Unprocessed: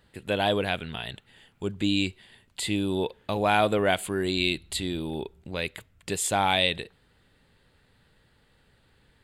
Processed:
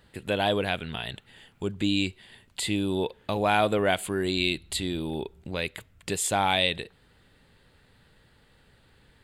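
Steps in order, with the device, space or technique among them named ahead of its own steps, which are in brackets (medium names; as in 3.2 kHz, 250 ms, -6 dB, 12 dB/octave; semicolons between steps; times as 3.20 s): parallel compression (in parallel at -3 dB: compression, threshold -37 dBFS, peak gain reduction 17.5 dB); on the sum: trim -1.5 dB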